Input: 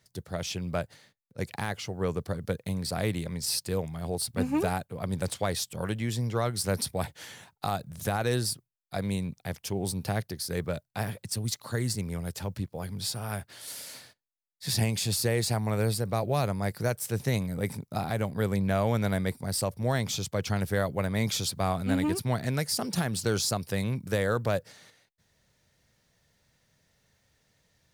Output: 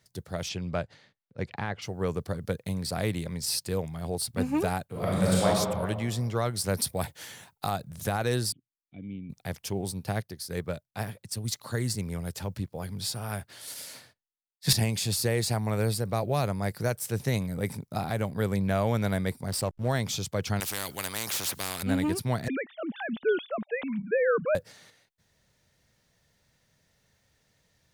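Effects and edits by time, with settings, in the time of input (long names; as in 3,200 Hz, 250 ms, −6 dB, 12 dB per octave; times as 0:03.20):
0:00.48–0:01.81: low-pass filter 6,600 Hz → 2,600 Hz
0:04.88–0:05.45: thrown reverb, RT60 1.7 s, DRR −7.5 dB
0:06.77–0:07.70: high-shelf EQ 9,900 Hz +8 dB
0:08.52–0:09.30: formant resonators in series i
0:09.81–0:11.48: expander for the loud parts, over −40 dBFS
0:13.74–0:14.73: multiband upward and downward expander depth 100%
0:19.48–0:19.89: slack as between gear wheels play −34.5 dBFS
0:20.60–0:21.83: every bin compressed towards the loudest bin 4 to 1
0:22.48–0:24.55: three sine waves on the formant tracks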